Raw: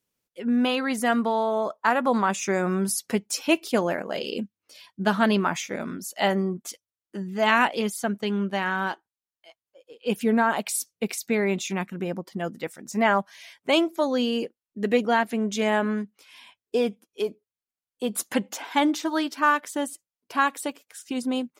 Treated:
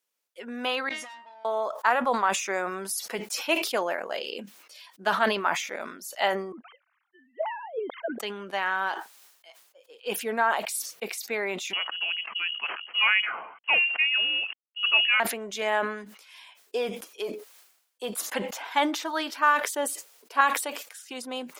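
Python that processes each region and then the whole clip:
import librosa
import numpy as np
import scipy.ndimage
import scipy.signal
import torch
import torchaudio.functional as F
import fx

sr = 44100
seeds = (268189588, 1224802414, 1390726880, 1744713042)

y = fx.chain(x, sr, fx.lowpass(hz=4000.0, slope=12),
    fx.comb_fb(f0_hz=310.0, decay_s=0.3, harmonics='all', damping=0.0, mix_pct=100),
    fx.tube_stage(drive_db=41.0, bias=0.4), at=(0.89, 1.45))
y = fx.chain(y, sr, fx.sine_speech(),
    fx.auto_wah(base_hz=200.0, top_hz=1400.0, q=2.4, full_db=-16.0, direction='down'), at=(6.52, 8.2))
y = fx.chain(y, sr, fx.cvsd(bps=64000),
    fx.freq_invert(carrier_hz=3100), at=(11.73, 15.2))
y = fx.chain(y, sr, fx.peak_eq(hz=440.0, db=9.5, octaves=0.57),
    fx.band_widen(depth_pct=40), at=(19.6, 20.41))
y = scipy.signal.sosfilt(scipy.signal.butter(2, 580.0, 'highpass', fs=sr, output='sos'), y)
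y = fx.dynamic_eq(y, sr, hz=7600.0, q=0.74, threshold_db=-46.0, ratio=4.0, max_db=-5)
y = fx.sustainer(y, sr, db_per_s=73.0)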